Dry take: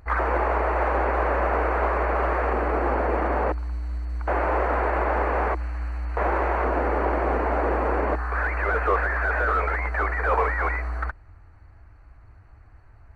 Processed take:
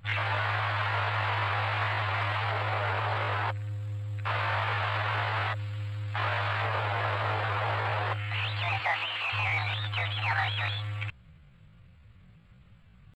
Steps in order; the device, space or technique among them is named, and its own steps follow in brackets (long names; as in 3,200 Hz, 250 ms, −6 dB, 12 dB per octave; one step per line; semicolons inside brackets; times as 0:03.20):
chipmunk voice (pitch shifter +9.5 semitones)
0:08.78–0:09.32: high-pass filter 190 Hz → 420 Hz 12 dB per octave
level −6 dB